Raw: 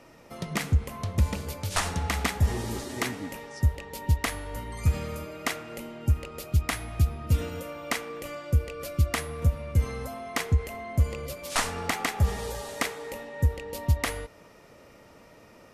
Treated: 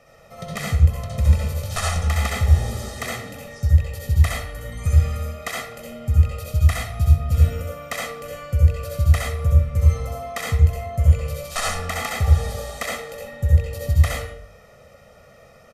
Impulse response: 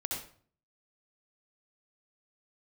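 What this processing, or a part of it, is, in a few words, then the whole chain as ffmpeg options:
microphone above a desk: -filter_complex "[0:a]aecho=1:1:1.6:0.9[a];[1:a]atrim=start_sample=2205[b];[a][b]afir=irnorm=-1:irlink=0,volume=-2dB"

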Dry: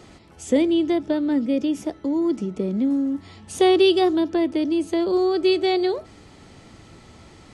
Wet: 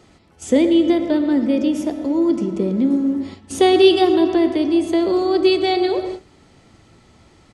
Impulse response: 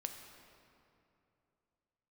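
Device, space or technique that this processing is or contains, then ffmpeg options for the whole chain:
keyed gated reverb: -filter_complex "[0:a]asplit=2[a][b];[b]adelay=116,lowpass=f=2k:p=1,volume=-12dB,asplit=2[c][d];[d]adelay=116,lowpass=f=2k:p=1,volume=0.21,asplit=2[e][f];[f]adelay=116,lowpass=f=2k:p=1,volume=0.21[g];[a][c][e][g]amix=inputs=4:normalize=0,asplit=3[h][i][j];[1:a]atrim=start_sample=2205[k];[i][k]afir=irnorm=-1:irlink=0[l];[j]apad=whole_len=373411[m];[l][m]sidechaingate=range=-33dB:threshold=-40dB:ratio=16:detection=peak,volume=6.5dB[n];[h][n]amix=inputs=2:normalize=0,volume=-4.5dB"

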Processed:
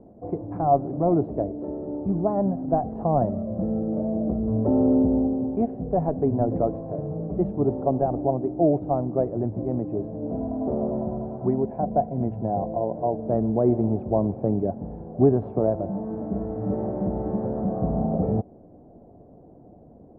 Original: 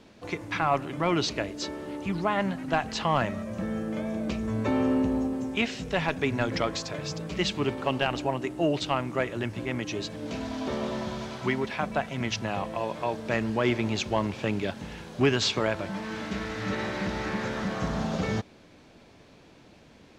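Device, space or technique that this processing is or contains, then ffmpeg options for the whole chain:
under water: -filter_complex "[0:a]asettb=1/sr,asplit=3[a][b][c];[a]atrim=end=11.604[d];[b]atrim=start=11.6:end=13.19,asetpts=PTS-STARTPTS,afade=t=in:d=0.004:c=qsin,afade=t=out:st=1.586:d=0.004:c=qsin,bandreject=f=1.2k:w=5.4[e];[c]atrim=start=13.186[f];[d][e]acrossfade=d=0.004:c1=hsin:c2=qsin[g];[g][f]acrossfade=d=0.004:c1=qsin:c2=hsin,lowpass=f=660:w=0.5412,lowpass=f=660:w=1.3066,equalizer=f=720:t=o:w=0.21:g=9,volume=5.5dB"

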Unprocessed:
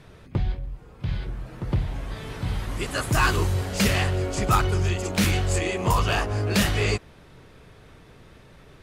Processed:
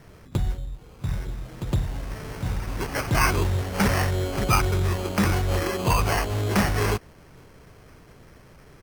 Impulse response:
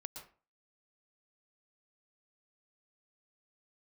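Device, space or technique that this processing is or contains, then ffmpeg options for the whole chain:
crushed at another speed: -af "asetrate=35280,aresample=44100,acrusher=samples=15:mix=1:aa=0.000001,asetrate=55125,aresample=44100"

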